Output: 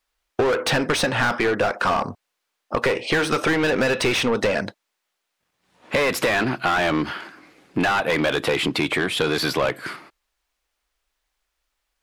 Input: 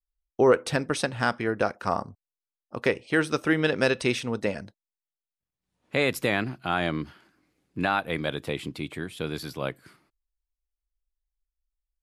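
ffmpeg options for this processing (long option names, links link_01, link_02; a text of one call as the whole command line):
ffmpeg -i in.wav -filter_complex "[0:a]asplit=2[link_01][link_02];[link_02]highpass=frequency=720:poles=1,volume=28dB,asoftclip=type=tanh:threshold=-9.5dB[link_03];[link_01][link_03]amix=inputs=2:normalize=0,lowpass=frequency=2500:poles=1,volume=-6dB,acompressor=threshold=-22dB:ratio=6,volume=4dB" out.wav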